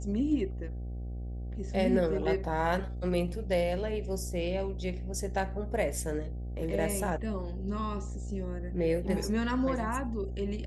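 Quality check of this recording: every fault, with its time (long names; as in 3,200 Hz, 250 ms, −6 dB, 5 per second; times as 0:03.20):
mains buzz 60 Hz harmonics 13 −37 dBFS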